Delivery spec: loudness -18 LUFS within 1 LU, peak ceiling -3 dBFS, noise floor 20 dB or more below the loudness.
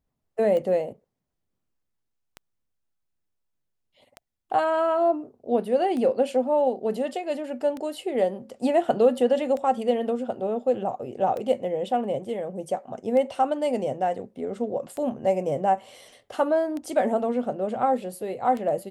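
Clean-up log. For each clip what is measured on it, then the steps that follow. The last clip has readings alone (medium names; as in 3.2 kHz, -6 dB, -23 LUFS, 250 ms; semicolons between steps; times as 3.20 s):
clicks found 11; loudness -25.5 LUFS; peak level -8.5 dBFS; loudness target -18.0 LUFS
-> de-click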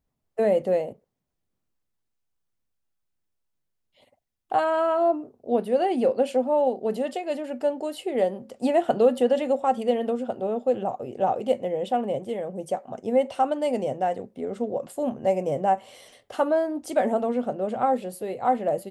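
clicks found 0; loudness -25.5 LUFS; peak level -8.5 dBFS; loudness target -18.0 LUFS
-> trim +7.5 dB; peak limiter -3 dBFS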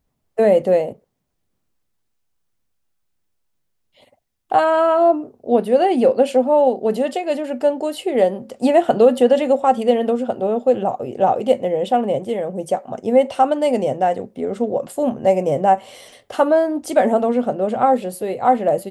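loudness -18.0 LUFS; peak level -3.0 dBFS; noise floor -71 dBFS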